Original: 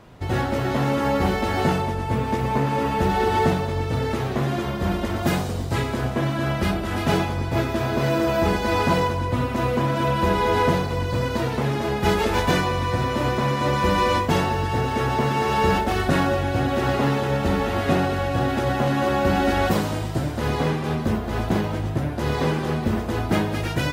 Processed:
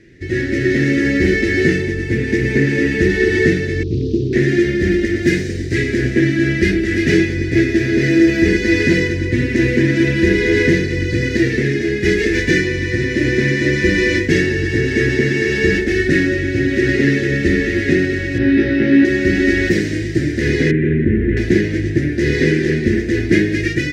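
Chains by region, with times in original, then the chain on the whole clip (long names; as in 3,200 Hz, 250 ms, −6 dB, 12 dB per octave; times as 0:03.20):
0:03.83–0:04.33: inverse Chebyshev band-stop filter 670–2,300 Hz + high-frequency loss of the air 190 metres + highs frequency-modulated by the lows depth 0.41 ms
0:18.38–0:19.05: moving average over 6 samples + flutter between parallel walls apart 3.1 metres, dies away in 0.34 s
0:20.71–0:21.37: head-to-tape spacing loss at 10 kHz 38 dB + phaser with its sweep stopped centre 2,100 Hz, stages 4 + envelope flattener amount 70%
whole clip: drawn EQ curve 230 Hz 0 dB, 350 Hz +11 dB, 850 Hz −29 dB, 1,200 Hz −26 dB, 1,800 Hz +13 dB, 3,100 Hz −3 dB, 5,800 Hz +4 dB, 14,000 Hz −16 dB; automatic gain control; level −1 dB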